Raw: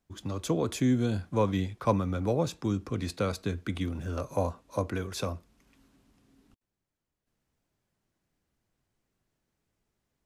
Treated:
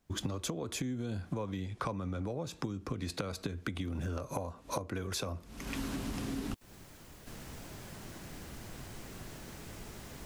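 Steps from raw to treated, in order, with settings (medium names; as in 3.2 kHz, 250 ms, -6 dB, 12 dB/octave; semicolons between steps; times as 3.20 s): recorder AGC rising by 44 dB/s; 1.66–2.44 s: low-pass 11 kHz 24 dB/octave; compression 10:1, threshold -37 dBFS, peak gain reduction 18.5 dB; trim +3.5 dB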